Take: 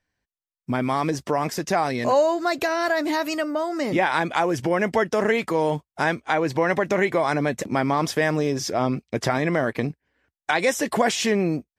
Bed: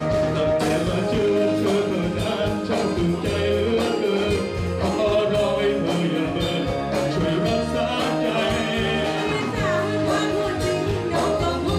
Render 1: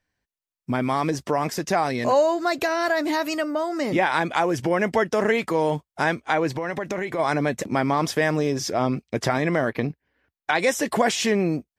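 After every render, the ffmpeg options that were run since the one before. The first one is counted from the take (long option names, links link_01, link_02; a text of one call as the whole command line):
ffmpeg -i in.wav -filter_complex "[0:a]asplit=3[link_01][link_02][link_03];[link_01]afade=type=out:start_time=6.55:duration=0.02[link_04];[link_02]acompressor=threshold=-24dB:ratio=4:attack=3.2:release=140:knee=1:detection=peak,afade=type=in:start_time=6.55:duration=0.02,afade=type=out:start_time=7.18:duration=0.02[link_05];[link_03]afade=type=in:start_time=7.18:duration=0.02[link_06];[link_04][link_05][link_06]amix=inputs=3:normalize=0,asettb=1/sr,asplit=3[link_07][link_08][link_09];[link_07]atrim=end=9.694[link_10];[link_08]atrim=start=9.69:end=10.55,asetpts=PTS-STARTPTS,afade=type=in:duration=0.004:curve=qsin,afade=type=out:start_time=0.856:duration=0.004:curve=qsin,equalizer=frequency=7900:width_type=o:width=0.6:gain=-12[link_11];[link_09]atrim=start=10.546[link_12];[link_10][link_11]acrossfade=duration=0.004:curve1=hsin:curve2=qsin[link_13];[link_13][link_12]acrossfade=duration=0.004:curve1=qsin:curve2=hsin" out.wav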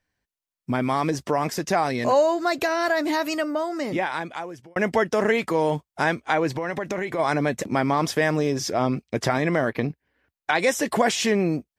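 ffmpeg -i in.wav -filter_complex "[0:a]asplit=2[link_01][link_02];[link_01]atrim=end=4.76,asetpts=PTS-STARTPTS,afade=type=out:start_time=3.51:duration=1.25[link_03];[link_02]atrim=start=4.76,asetpts=PTS-STARTPTS,afade=type=in:duration=0.004:curve=hsin[link_04];[link_03][link_04]concat=n=2:v=0:a=1" out.wav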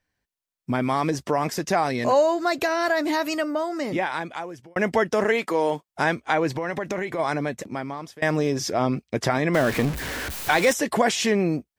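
ffmpeg -i in.wav -filter_complex "[0:a]asettb=1/sr,asplit=3[link_01][link_02][link_03];[link_01]atrim=end=5.244[link_04];[link_02]atrim=start=5.24:end=5.88,asetpts=PTS-STARTPTS,afade=type=in:duration=0.004:curve=qsin,afade=type=out:start_time=0.636:duration=0.004:curve=qsin,highpass=250[link_05];[link_03]atrim=start=5.876[link_06];[link_04][link_05]acrossfade=duration=0.004:curve1=hsin:curve2=qsin[link_07];[link_07][link_06]acrossfade=duration=0.004:curve1=qsin:curve2=hsin,asettb=1/sr,asplit=3[link_08][link_09][link_10];[link_08]atrim=end=9.544[link_11];[link_09]atrim=start=9.54:end=10.73,asetpts=PTS-STARTPTS,afade=type=in:duration=0.004:curve=qsin,afade=type=out:start_time=1.186:duration=0.004:curve=qsin,aeval=exprs='val(0)+0.5*0.0596*sgn(val(0))':channel_layout=same[link_12];[link_10]atrim=start=10.726[link_13];[link_11][link_12]acrossfade=duration=0.004:curve1=hsin:curve2=qsin[link_14];[link_14][link_13]acrossfade=duration=0.004:curve1=qsin:curve2=hsin,asplit=2[link_15][link_16];[link_15]atrim=end=8.22,asetpts=PTS-STARTPTS,afade=type=out:start_time=6.97:duration=1.25:silence=0.0668344[link_17];[link_16]atrim=start=8.22,asetpts=PTS-STARTPTS,afade=type=in:duration=0.004:curve=hsin:silence=0.0668344[link_18];[link_17][link_18]concat=n=2:v=0:a=1" out.wav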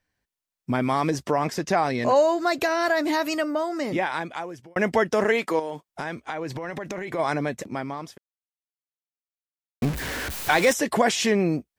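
ffmpeg -i in.wav -filter_complex "[0:a]asettb=1/sr,asplit=3[link_01][link_02][link_03];[link_01]atrim=end=1.324[link_04];[link_02]atrim=start=1.32:end=2.16,asetpts=PTS-STARTPTS,afade=type=in:duration=0.004:curve=qsin,afade=type=out:start_time=0.836:duration=0.004:curve=qsin,highshelf=frequency=8400:gain=-9[link_05];[link_03]atrim=start=2.156[link_06];[link_04][link_05]acrossfade=duration=0.004:curve1=hsin:curve2=qsin[link_07];[link_07][link_06]acrossfade=duration=0.004:curve1=qsin:curve2=hsin,asettb=1/sr,asplit=3[link_08][link_09][link_10];[link_08]atrim=end=5.594[link_11];[link_09]atrim=start=5.59:end=7.08,asetpts=PTS-STARTPTS,afade=type=in:duration=0.004:curve=qsin,afade=type=out:start_time=1.486:duration=0.004:curve=qsin,acompressor=threshold=-28dB:ratio=4:attack=3.2:release=140:knee=1:detection=peak[link_12];[link_10]atrim=start=7.076[link_13];[link_11][link_12]acrossfade=duration=0.004:curve1=hsin:curve2=qsin[link_14];[link_14][link_13]acrossfade=duration=0.004:curve1=qsin:curve2=hsin,asplit=3[link_15][link_16][link_17];[link_15]atrim=end=8.18,asetpts=PTS-STARTPTS,afade=type=out:start_time=8.176:duration=0.004:curve=hsin[link_18];[link_16]atrim=start=8.18:end=9.82,asetpts=PTS-STARTPTS,volume=0[link_19];[link_17]atrim=start=9.82,asetpts=PTS-STARTPTS,afade=type=in:duration=0.004:curve=hsin[link_20];[link_18][link_19][link_20]concat=n=3:v=0:a=1" out.wav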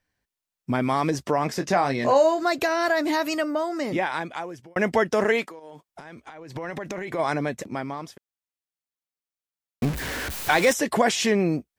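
ffmpeg -i in.wav -filter_complex "[0:a]asettb=1/sr,asplit=3[link_01][link_02][link_03];[link_01]atrim=end=1.474[link_04];[link_02]atrim=start=1.47:end=2.43,asetpts=PTS-STARTPTS,afade=type=in:duration=0.004:curve=qsin,afade=type=out:start_time=0.956:duration=0.004:curve=qsin,asplit=2[link_05][link_06];[link_06]adelay=22,volume=-8.5dB[link_07];[link_05][link_07]amix=inputs=2:normalize=0,atrim=end_sample=42336[link_08];[link_03]atrim=start=2.426[link_09];[link_04][link_08]acrossfade=duration=0.004:curve1=hsin:curve2=qsin[link_10];[link_10][link_09]acrossfade=duration=0.004:curve1=qsin:curve2=hsin,asettb=1/sr,asplit=3[link_11][link_12][link_13];[link_11]atrim=end=5.434[link_14];[link_12]atrim=start=5.43:end=6.56,asetpts=PTS-STARTPTS,afade=type=in:duration=0.004:curve=qsin,afade=type=out:start_time=1.126:duration=0.004:curve=qsin,acompressor=threshold=-37dB:ratio=20:attack=3.2:release=140:knee=1:detection=peak[link_15];[link_13]atrim=start=6.556[link_16];[link_14][link_15]acrossfade=duration=0.004:curve1=hsin:curve2=qsin[link_17];[link_17][link_16]acrossfade=duration=0.004:curve1=qsin:curve2=hsin" out.wav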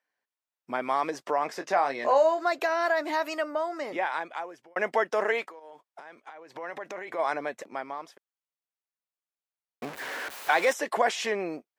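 ffmpeg -i in.wav -af "highpass=580,highshelf=frequency=2800:gain=-11" out.wav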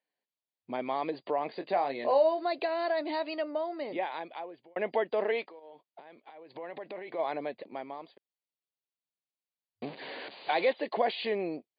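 ffmpeg -i in.wav -af "afftfilt=real='re*between(b*sr/4096,100,4800)':imag='im*between(b*sr/4096,100,4800)':win_size=4096:overlap=0.75,equalizer=frequency=1400:width=1.4:gain=-14.5" out.wav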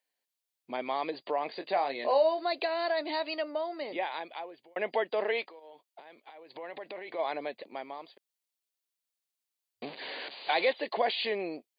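ffmpeg -i in.wav -af "highpass=frequency=300:poles=1,highshelf=frequency=3000:gain=8.5" out.wav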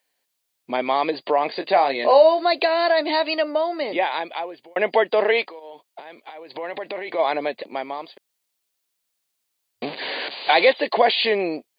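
ffmpeg -i in.wav -af "volume=11.5dB" out.wav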